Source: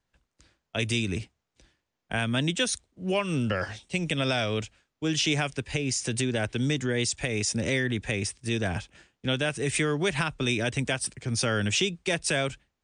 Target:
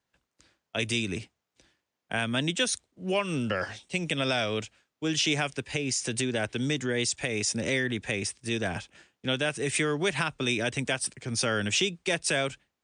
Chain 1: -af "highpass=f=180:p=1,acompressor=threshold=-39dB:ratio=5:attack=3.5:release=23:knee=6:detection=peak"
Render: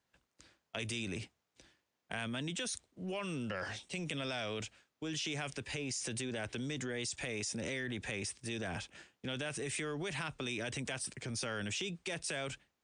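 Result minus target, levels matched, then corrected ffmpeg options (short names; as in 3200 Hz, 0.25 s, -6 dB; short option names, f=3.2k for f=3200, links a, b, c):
compressor: peak gain reduction +14.5 dB
-af "highpass=f=180:p=1"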